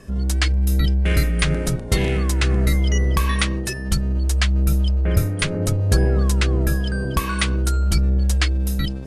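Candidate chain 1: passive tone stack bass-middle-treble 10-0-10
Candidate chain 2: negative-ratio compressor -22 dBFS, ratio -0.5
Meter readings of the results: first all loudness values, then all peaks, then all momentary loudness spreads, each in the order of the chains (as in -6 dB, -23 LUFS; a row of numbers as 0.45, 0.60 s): -27.5, -25.0 LUFS; -9.0, -8.0 dBFS; 5, 9 LU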